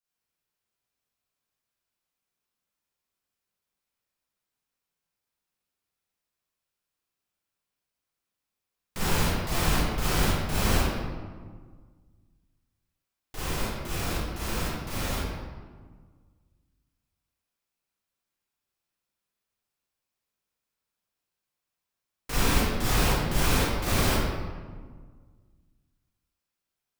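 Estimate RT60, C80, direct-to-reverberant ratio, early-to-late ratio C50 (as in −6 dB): 1.6 s, −1.0 dB, −10.5 dB, −5.5 dB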